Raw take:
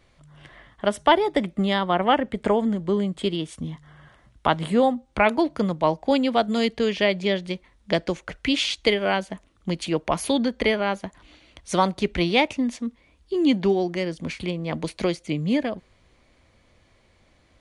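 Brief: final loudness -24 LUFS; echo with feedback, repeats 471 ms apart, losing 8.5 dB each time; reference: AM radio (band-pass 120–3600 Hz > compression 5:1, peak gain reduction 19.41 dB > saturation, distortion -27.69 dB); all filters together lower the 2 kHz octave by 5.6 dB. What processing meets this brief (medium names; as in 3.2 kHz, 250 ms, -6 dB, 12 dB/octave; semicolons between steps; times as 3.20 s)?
band-pass 120–3600 Hz; peaking EQ 2 kHz -6.5 dB; feedback delay 471 ms, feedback 38%, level -8.5 dB; compression 5:1, threshold -35 dBFS; saturation -22 dBFS; trim +14.5 dB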